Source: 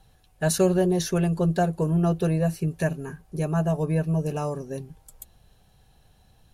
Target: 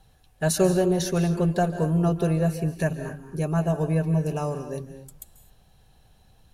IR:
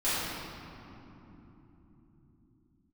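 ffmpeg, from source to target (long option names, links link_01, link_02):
-filter_complex "[0:a]asplit=2[link_01][link_02];[1:a]atrim=start_sample=2205,atrim=end_sample=6174,adelay=137[link_03];[link_02][link_03]afir=irnorm=-1:irlink=0,volume=-18.5dB[link_04];[link_01][link_04]amix=inputs=2:normalize=0"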